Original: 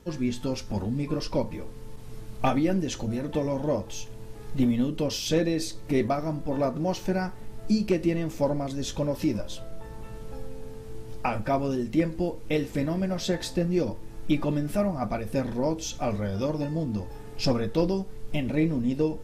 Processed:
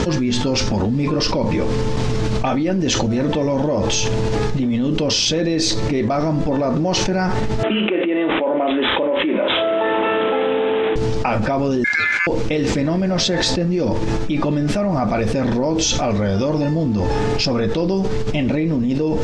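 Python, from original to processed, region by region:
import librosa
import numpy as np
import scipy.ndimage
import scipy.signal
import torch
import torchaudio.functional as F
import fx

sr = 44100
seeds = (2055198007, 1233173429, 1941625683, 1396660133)

y = fx.chain(x, sr, fx.highpass(hz=300.0, slope=24),
    fx.resample_bad(factor=6, down='none', up='filtered'),
    fx.room_flutter(wall_m=5.7, rt60_s=0.22), at=(7.63, 10.96))
y = fx.chain(y, sr, fx.highpass(hz=150.0, slope=12),
    fx.comb(ms=4.6, depth=0.72),
    fx.ring_mod(carrier_hz=1900.0), at=(11.84, 12.27))
y = scipy.signal.sosfilt(scipy.signal.butter(4, 6500.0, 'lowpass', fs=sr, output='sos'), y)
y = fx.low_shelf(y, sr, hz=68.0, db=-9.5)
y = fx.env_flatten(y, sr, amount_pct=100)
y = y * 10.0 ** (1.5 / 20.0)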